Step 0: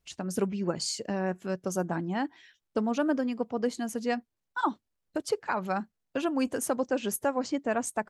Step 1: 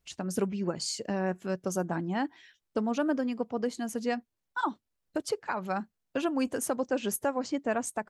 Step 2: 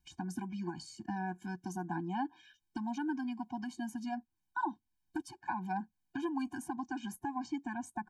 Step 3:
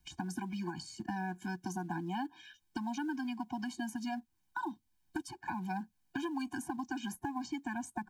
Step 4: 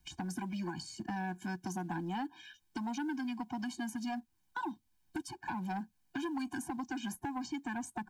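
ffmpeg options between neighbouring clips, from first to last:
-af "alimiter=limit=0.112:level=0:latency=1:release=368"
-filter_complex "[0:a]acrossover=split=430|1300[s0][s1][s2];[s0]acompressor=threshold=0.01:ratio=4[s3];[s1]acompressor=threshold=0.0251:ratio=4[s4];[s2]acompressor=threshold=0.00282:ratio=4[s5];[s3][s4][s5]amix=inputs=3:normalize=0,afftfilt=real='re*eq(mod(floor(b*sr/1024/360),2),0)':imag='im*eq(mod(floor(b*sr/1024/360),2),0)':win_size=1024:overlap=0.75,volume=1.12"
-filter_complex "[0:a]acrossover=split=320|830|2300[s0][s1][s2][s3];[s0]acompressor=threshold=0.00501:ratio=4[s4];[s1]acompressor=threshold=0.00224:ratio=4[s5];[s2]acompressor=threshold=0.00316:ratio=4[s6];[s3]acompressor=threshold=0.00224:ratio=4[s7];[s4][s5][s6][s7]amix=inputs=4:normalize=0,asplit=2[s8][s9];[s9]acrusher=bits=5:mode=log:mix=0:aa=0.000001,volume=0.316[s10];[s8][s10]amix=inputs=2:normalize=0,volume=1.58"
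-af "asoftclip=type=tanh:threshold=0.0282,volume=1.19"

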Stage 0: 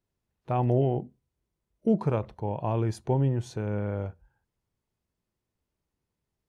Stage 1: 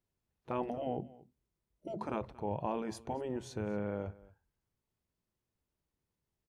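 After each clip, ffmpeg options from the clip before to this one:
-af "afftfilt=real='re*lt(hypot(re,im),0.251)':imag='im*lt(hypot(re,im),0.251)':win_size=1024:overlap=0.75,aecho=1:1:230:0.0891,volume=0.631"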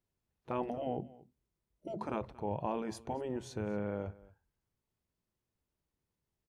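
-af anull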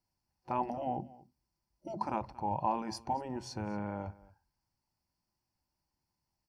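-af "superequalizer=7b=0.398:9b=2.51:13b=0.501:14b=2.82"

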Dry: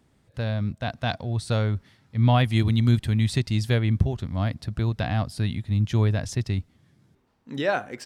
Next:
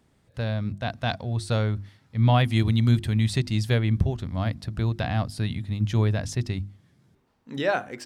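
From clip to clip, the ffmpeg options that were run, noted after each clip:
-af "bandreject=f=50:t=h:w=6,bandreject=f=100:t=h:w=6,bandreject=f=150:t=h:w=6,bandreject=f=200:t=h:w=6,bandreject=f=250:t=h:w=6,bandreject=f=300:t=h:w=6,bandreject=f=350:t=h:w=6"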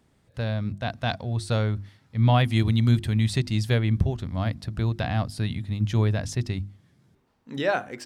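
-af anull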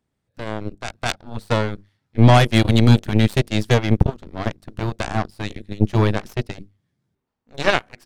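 -af "aeval=exprs='0.355*(cos(1*acos(clip(val(0)/0.355,-1,1)))-cos(1*PI/2))+0.0501*(cos(4*acos(clip(val(0)/0.355,-1,1)))-cos(4*PI/2))+0.0562*(cos(7*acos(clip(val(0)/0.355,-1,1)))-cos(7*PI/2))+0.00794*(cos(8*acos(clip(val(0)/0.355,-1,1)))-cos(8*PI/2))':c=same,volume=2.24"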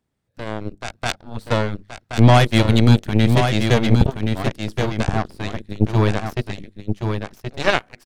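-af "aecho=1:1:1075:0.501"

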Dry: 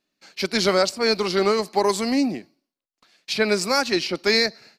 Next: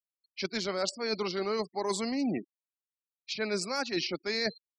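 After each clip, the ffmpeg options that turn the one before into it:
-af "afftfilt=real='re*gte(hypot(re,im),0.0224)':imag='im*gte(hypot(re,im),0.0224)':win_size=1024:overlap=0.75,areverse,acompressor=threshold=0.0398:ratio=12,areverse"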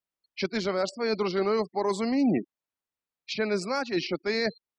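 -af "highshelf=f=3300:g=-11.5,alimiter=level_in=1.19:limit=0.0631:level=0:latency=1:release=433,volume=0.841,volume=2.66"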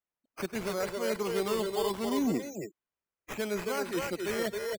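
-filter_complex "[0:a]acrusher=samples=9:mix=1:aa=0.000001:lfo=1:lforange=5.4:lforate=0.74,asplit=2[s0][s1];[s1]aecho=0:1:99|270|272:0.119|0.473|0.501[s2];[s0][s2]amix=inputs=2:normalize=0,volume=0.531"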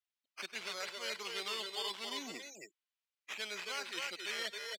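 -af "bandpass=f=3400:t=q:w=1.4:csg=0,volume=1.58"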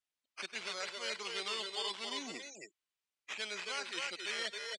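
-af "aresample=22050,aresample=44100,volume=1.12"

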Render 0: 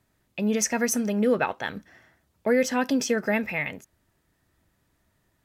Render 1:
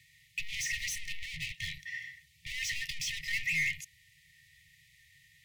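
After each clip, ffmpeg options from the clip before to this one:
-filter_complex "[0:a]asplit=2[s0][s1];[s1]highpass=f=720:p=1,volume=63.1,asoftclip=type=tanh:threshold=0.299[s2];[s0][s2]amix=inputs=2:normalize=0,lowpass=f=1700:p=1,volume=0.501,equalizer=f=150:t=o:w=2.6:g=-5,afftfilt=real='re*(1-between(b*sr/4096,170,1800))':imag='im*(1-between(b*sr/4096,170,1800))':win_size=4096:overlap=0.75,volume=0.398"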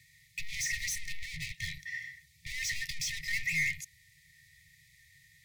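-af "equalizer=f=2900:t=o:w=0.39:g=-11.5,volume=1.33"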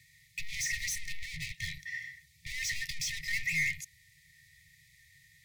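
-af anull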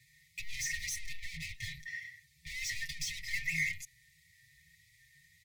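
-filter_complex "[0:a]asplit=2[s0][s1];[s1]adelay=5.7,afreqshift=1.8[s2];[s0][s2]amix=inputs=2:normalize=1"

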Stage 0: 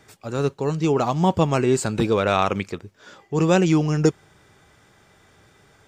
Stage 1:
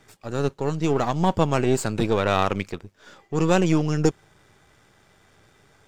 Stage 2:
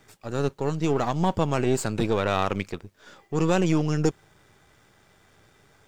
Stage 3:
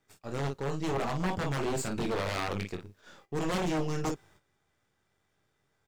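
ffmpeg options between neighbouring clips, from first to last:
-af "aeval=exprs='if(lt(val(0),0),0.447*val(0),val(0))':c=same"
-filter_complex "[0:a]asplit=2[s0][s1];[s1]alimiter=limit=0.251:level=0:latency=1,volume=0.944[s2];[s0][s2]amix=inputs=2:normalize=0,acrusher=bits=10:mix=0:aa=0.000001,volume=0.447"
-af "aecho=1:1:22|51:0.501|0.422,agate=range=0.224:threshold=0.00282:ratio=16:detection=peak,aeval=exprs='0.126*(abs(mod(val(0)/0.126+3,4)-2)-1)':c=same,volume=0.501"

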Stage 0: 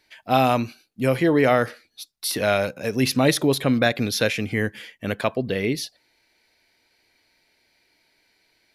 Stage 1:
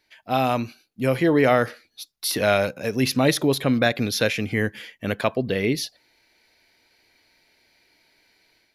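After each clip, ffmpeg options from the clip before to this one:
-af "equalizer=f=8400:w=5.8:g=-6.5,dynaudnorm=f=330:g=3:m=2.24,volume=0.631"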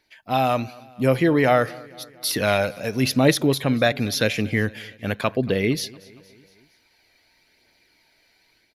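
-af "aphaser=in_gain=1:out_gain=1:delay=1.7:decay=0.29:speed=0.91:type=triangular,aecho=1:1:231|462|693|924:0.0708|0.0411|0.0238|0.0138"

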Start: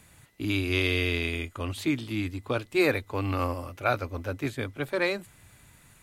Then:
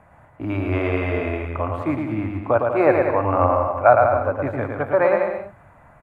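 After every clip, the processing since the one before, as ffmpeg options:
-af "firequalizer=gain_entry='entry(410,0);entry(630,14);entry(3700,-24)':delay=0.05:min_phase=1,aecho=1:1:110|192.5|254.4|300.8|335.6:0.631|0.398|0.251|0.158|0.1,volume=1.41"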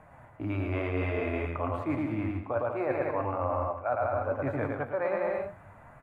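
-af "flanger=delay=6.3:depth=6.3:regen=63:speed=0.65:shape=triangular,areverse,acompressor=threshold=0.0355:ratio=6,areverse,volume=1.26"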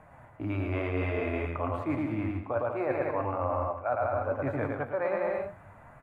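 -af anull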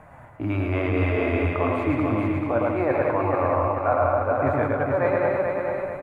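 -af "aecho=1:1:436|872|1308|1744|2180:0.631|0.271|0.117|0.0502|0.0216,volume=2.11"

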